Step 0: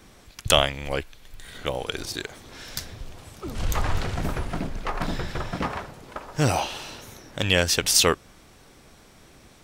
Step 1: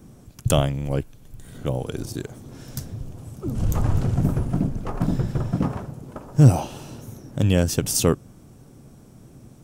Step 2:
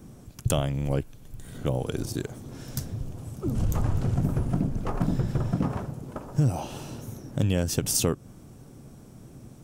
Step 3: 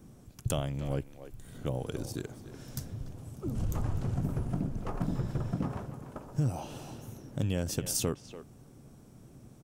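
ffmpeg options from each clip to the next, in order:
-af "equalizer=f=125:t=o:w=1:g=12,equalizer=f=250:t=o:w=1:g=6,equalizer=f=1k:t=o:w=1:g=-3,equalizer=f=2k:t=o:w=1:g=-10,equalizer=f=4k:t=o:w=1:g=-10"
-af "acompressor=threshold=-21dB:ratio=4"
-filter_complex "[0:a]asplit=2[a][b];[b]adelay=290,highpass=300,lowpass=3.4k,asoftclip=type=hard:threshold=-18dB,volume=-11dB[c];[a][c]amix=inputs=2:normalize=0,volume=-6.5dB"

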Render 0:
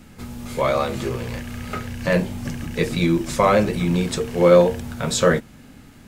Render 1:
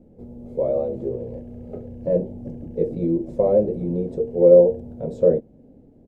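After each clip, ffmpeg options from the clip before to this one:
-af "firequalizer=gain_entry='entry(120,0);entry(500,11);entry(1200,-25);entry(4300,-28)':delay=0.05:min_phase=1,volume=-7.5dB"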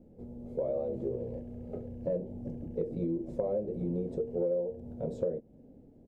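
-af "acompressor=threshold=-23dB:ratio=8,volume=-5.5dB"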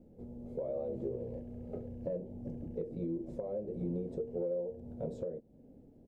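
-af "alimiter=level_in=1dB:limit=-24dB:level=0:latency=1:release=497,volume=-1dB,volume=-2dB"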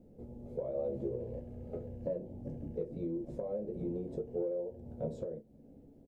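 -af "aecho=1:1:14|32:0.422|0.224"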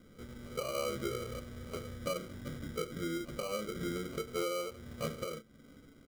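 -af "acrusher=samples=25:mix=1:aa=0.000001"

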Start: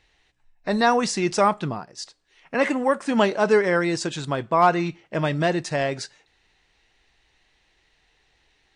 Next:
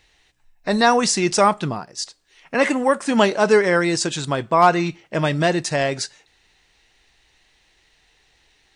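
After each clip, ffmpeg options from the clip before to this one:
-af "highshelf=f=5.1k:g=8.5,volume=3dB"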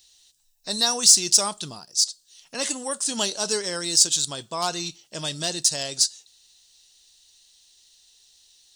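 -af "aexciter=amount=8.7:drive=8.3:freq=3.3k,volume=-14dB"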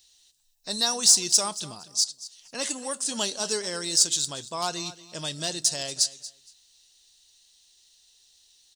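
-af "aecho=1:1:233|466:0.141|0.0283,volume=-3dB"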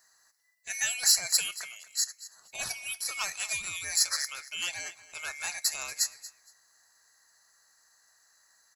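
-af "afftfilt=real='real(if(lt(b,920),b+92*(1-2*mod(floor(b/92),2)),b),0)':imag='imag(if(lt(b,920),b+92*(1-2*mod(floor(b/92),2)),b),0)':win_size=2048:overlap=0.75,volume=-5dB"

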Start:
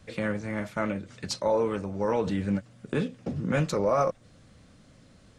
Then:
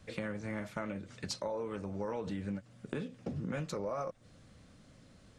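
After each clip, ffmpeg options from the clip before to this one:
-af "acompressor=threshold=-31dB:ratio=6,volume=-3.5dB"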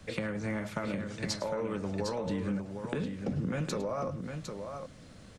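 -filter_complex "[0:a]acrossover=split=130[a][b];[b]acompressor=threshold=-38dB:ratio=6[c];[a][c]amix=inputs=2:normalize=0,bandreject=f=50:t=h:w=6,bandreject=f=100:t=h:w=6,aecho=1:1:106|756:0.158|0.473,volume=7dB"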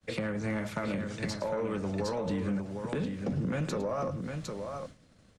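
-filter_complex "[0:a]agate=range=-33dB:threshold=-42dB:ratio=3:detection=peak,acrossover=split=120|2000[a][b][c];[c]alimiter=level_in=6dB:limit=-24dB:level=0:latency=1:release=340,volume=-6dB[d];[a][b][d]amix=inputs=3:normalize=0,asoftclip=type=tanh:threshold=-25dB,volume=2.5dB"

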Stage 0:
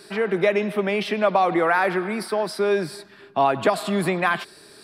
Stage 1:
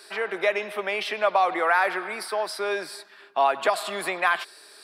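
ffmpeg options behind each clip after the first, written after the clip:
-af "highpass=630"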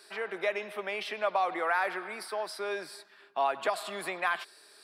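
-af "lowshelf=f=96:g=10.5,volume=-7.5dB"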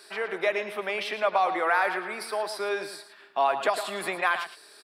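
-filter_complex "[0:a]asplit=2[a][b];[b]adelay=110.8,volume=-10dB,highshelf=f=4k:g=-2.49[c];[a][c]amix=inputs=2:normalize=0,volume=4.5dB"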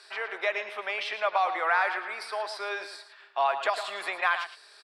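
-af "highpass=670,lowpass=6.4k"

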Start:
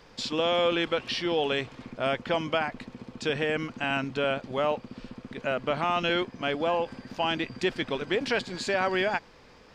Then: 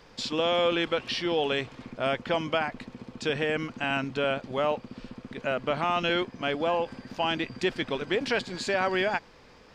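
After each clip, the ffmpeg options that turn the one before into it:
-af anull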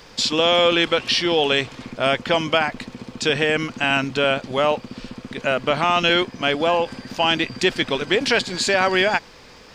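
-af "highshelf=f=3k:g=8.5,volume=7dB"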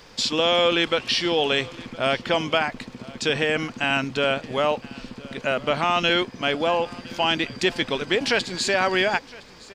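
-af "aecho=1:1:1013:0.0841,volume=-3dB"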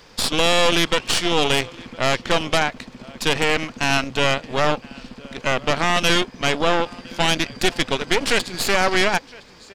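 -af "aeval=exprs='0.473*(cos(1*acos(clip(val(0)/0.473,-1,1)))-cos(1*PI/2))+0.133*(cos(6*acos(clip(val(0)/0.473,-1,1)))-cos(6*PI/2))':c=same"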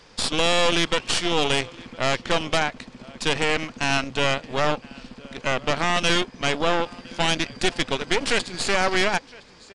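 -af "aresample=22050,aresample=44100,volume=-3dB"

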